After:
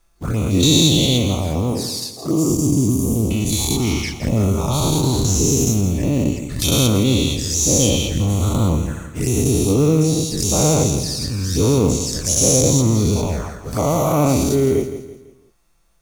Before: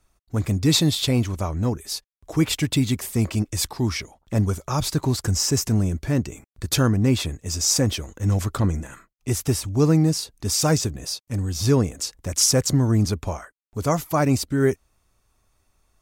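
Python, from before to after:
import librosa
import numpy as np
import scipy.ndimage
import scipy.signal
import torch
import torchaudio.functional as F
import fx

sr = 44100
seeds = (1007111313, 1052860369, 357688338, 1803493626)

p1 = fx.spec_dilate(x, sr, span_ms=240)
p2 = fx.highpass(p1, sr, hz=170.0, slope=12, at=(1.72, 2.5))
p3 = fx.spec_erase(p2, sr, start_s=2.12, length_s=1.18, low_hz=1300.0, high_hz=4600.0)
p4 = 10.0 ** (-9.5 / 20.0) * np.tanh(p3 / 10.0 ** (-9.5 / 20.0))
p5 = p3 + (p4 * 10.0 ** (-11.0 / 20.0))
p6 = fx.quant_companded(p5, sr, bits=6)
p7 = fx.env_flanger(p6, sr, rest_ms=6.1, full_db=-13.5)
p8 = p7 + fx.echo_feedback(p7, sr, ms=167, feedback_pct=39, wet_db=-11, dry=0)
y = p8 * 10.0 ** (-2.0 / 20.0)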